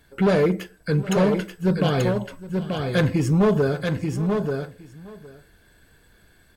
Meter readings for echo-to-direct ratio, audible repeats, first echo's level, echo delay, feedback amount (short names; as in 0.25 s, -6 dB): -5.0 dB, 3, -18.5 dB, 0.764 s, no steady repeat